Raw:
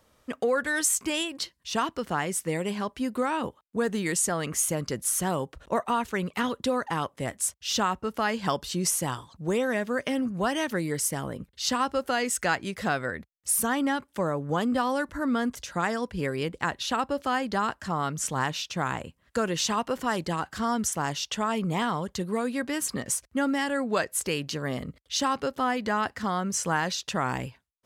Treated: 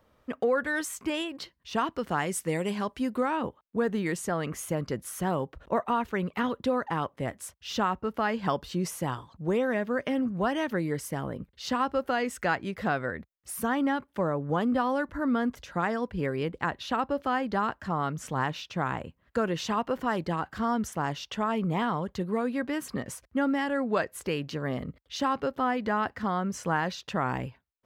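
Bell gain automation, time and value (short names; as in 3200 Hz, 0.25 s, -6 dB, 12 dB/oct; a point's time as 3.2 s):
bell 8400 Hz 2 oct
1.73 s -14 dB
2.21 s -3.5 dB
2.96 s -3.5 dB
3.42 s -14.5 dB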